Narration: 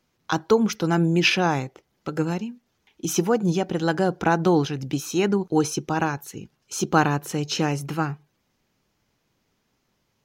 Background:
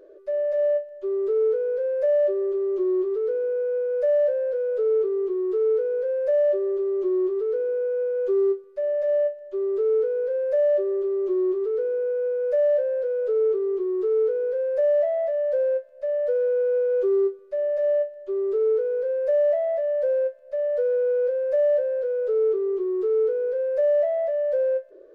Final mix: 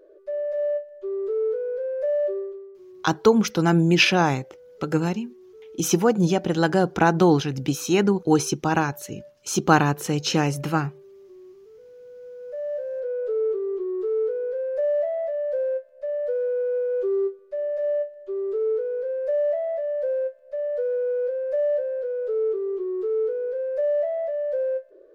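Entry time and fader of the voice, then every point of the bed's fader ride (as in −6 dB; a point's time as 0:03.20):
2.75 s, +2.0 dB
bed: 0:02.37 −3 dB
0:02.78 −23.5 dB
0:11.81 −23.5 dB
0:13.10 −2.5 dB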